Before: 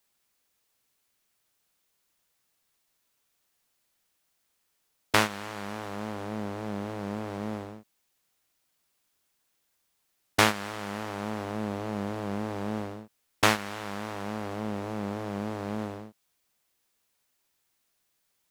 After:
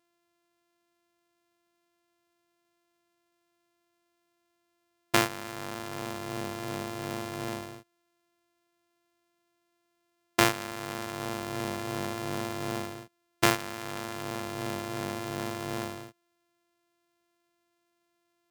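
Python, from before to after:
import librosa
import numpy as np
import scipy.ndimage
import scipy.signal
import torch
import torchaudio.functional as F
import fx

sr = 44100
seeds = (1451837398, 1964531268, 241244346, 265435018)

y = np.r_[np.sort(x[:len(x) // 128 * 128].reshape(-1, 128), axis=1).ravel(), x[len(x) // 128 * 128:]]
y = scipy.signal.sosfilt(scipy.signal.butter(2, 77.0, 'highpass', fs=sr, output='sos'), y)
y = F.gain(torch.from_numpy(y), -1.0).numpy()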